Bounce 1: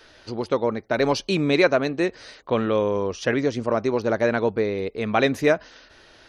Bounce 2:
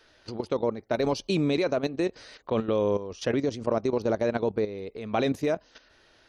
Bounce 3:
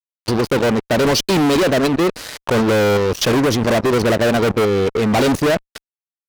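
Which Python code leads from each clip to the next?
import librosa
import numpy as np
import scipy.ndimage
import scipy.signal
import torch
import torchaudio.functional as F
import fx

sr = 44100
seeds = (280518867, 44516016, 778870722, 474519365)

y1 = fx.dynamic_eq(x, sr, hz=1700.0, q=1.1, threshold_db=-39.0, ratio=4.0, max_db=-8)
y1 = fx.level_steps(y1, sr, step_db=12)
y2 = fx.spec_gate(y1, sr, threshold_db=-30, keep='strong')
y2 = fx.fuzz(y2, sr, gain_db=39.0, gate_db=-46.0)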